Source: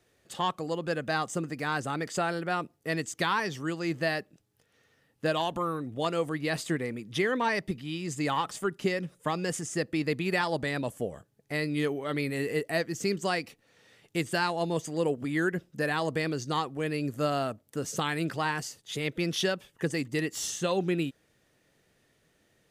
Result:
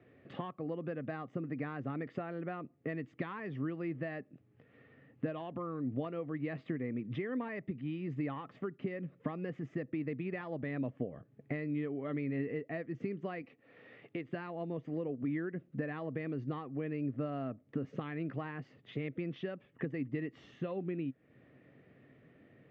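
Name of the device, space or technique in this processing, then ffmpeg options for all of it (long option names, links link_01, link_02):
bass amplifier: -filter_complex "[0:a]acompressor=threshold=-45dB:ratio=5,highpass=85,equalizer=frequency=130:width_type=q:width=4:gain=6,equalizer=frequency=260:width_type=q:width=4:gain=8,equalizer=frequency=900:width_type=q:width=4:gain=-9,equalizer=frequency=1500:width_type=q:width=4:gain=-7,lowpass=frequency=2200:width=0.5412,lowpass=frequency=2200:width=1.3066,asettb=1/sr,asplit=3[link_01][link_02][link_03];[link_01]atrim=end=13.424[link_04];[link_02]atrim=start=13.42:end=14.29,asetpts=PTS-STARTPTS,afade=type=in:duration=0.004:curve=qsin,afade=type=out:start_time=0.866:duration=0.004:curve=qsin,bass=frequency=250:gain=-9,treble=frequency=4000:gain=2[link_05];[link_03]atrim=start=14.286[link_06];[link_04][link_05]acrossfade=duration=0.004:curve1=hsin:curve2=qsin[link_07];[link_07][link_06]acrossfade=duration=0.004:curve1=qsin:curve2=hsin,volume=7dB"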